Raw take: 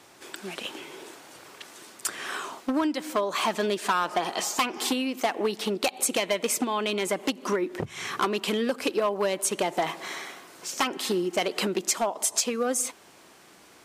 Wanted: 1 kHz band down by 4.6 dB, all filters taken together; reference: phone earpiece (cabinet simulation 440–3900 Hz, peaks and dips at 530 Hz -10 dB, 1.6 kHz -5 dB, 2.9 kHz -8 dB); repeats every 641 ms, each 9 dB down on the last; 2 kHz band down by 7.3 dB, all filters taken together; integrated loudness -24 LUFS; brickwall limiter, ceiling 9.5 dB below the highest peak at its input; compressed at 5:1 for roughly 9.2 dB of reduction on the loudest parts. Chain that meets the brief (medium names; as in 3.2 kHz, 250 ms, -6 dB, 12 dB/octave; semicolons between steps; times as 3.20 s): peaking EQ 1 kHz -3 dB; peaking EQ 2 kHz -4 dB; compression 5:1, threshold -33 dBFS; peak limiter -28.5 dBFS; cabinet simulation 440–3900 Hz, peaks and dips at 530 Hz -10 dB, 1.6 kHz -5 dB, 2.9 kHz -8 dB; feedback delay 641 ms, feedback 35%, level -9 dB; trim +20.5 dB